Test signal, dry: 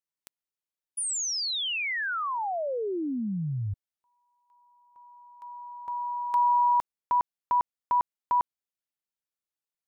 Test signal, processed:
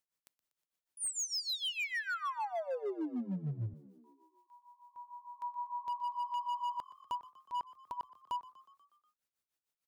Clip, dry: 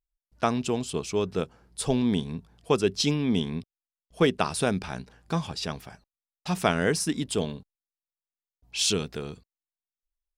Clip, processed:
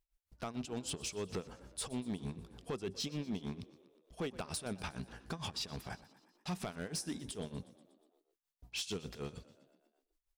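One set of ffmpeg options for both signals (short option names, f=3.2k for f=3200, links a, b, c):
-filter_complex "[0:a]acompressor=threshold=-38dB:ratio=6:attack=0.48:release=91:detection=peak,tremolo=f=6.6:d=0.88,asoftclip=type=hard:threshold=-38.5dB,asplit=7[a][b][c][d][e][f][g];[b]adelay=121,afreqshift=42,volume=-18.5dB[h];[c]adelay=242,afreqshift=84,volume=-22.7dB[i];[d]adelay=363,afreqshift=126,volume=-26.8dB[j];[e]adelay=484,afreqshift=168,volume=-31dB[k];[f]adelay=605,afreqshift=210,volume=-35.1dB[l];[g]adelay=726,afreqshift=252,volume=-39.3dB[m];[a][h][i][j][k][l][m]amix=inputs=7:normalize=0,volume=6dB"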